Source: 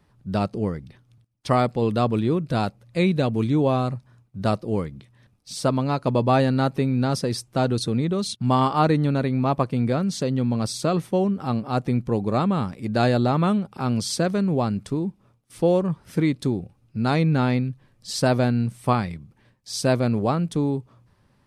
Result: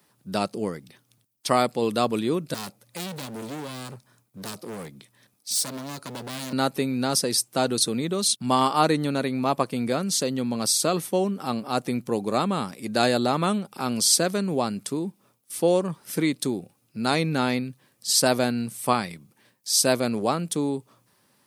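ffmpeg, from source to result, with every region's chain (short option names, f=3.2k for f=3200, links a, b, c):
-filter_complex "[0:a]asettb=1/sr,asplit=3[a][b][c];[a]atrim=end=2.544[d];[b]atrim=start=2.54:end=6.53,asetpts=PTS-STARTPTS,afade=t=in:d=0.004:c=qsin,afade=t=out:st=3.986:d=0.004:c=qsin,bandreject=f=2.8k:w=20,acrossover=split=270|3000[e][f][g];[f]acompressor=threshold=-27dB:ratio=6:attack=3.2:release=140:knee=2.83:detection=peak[h];[e][h][g]amix=inputs=3:normalize=0,volume=29dB,asoftclip=hard,volume=-29dB[i];[c]atrim=start=6.526[j];[d][i]acrossfade=d=0.004:c1=hsin:c2=qsin[k];[k][j]acrossfade=d=0.004:c1=qsin:c2=hsin,highpass=220,aemphasis=mode=production:type=75fm"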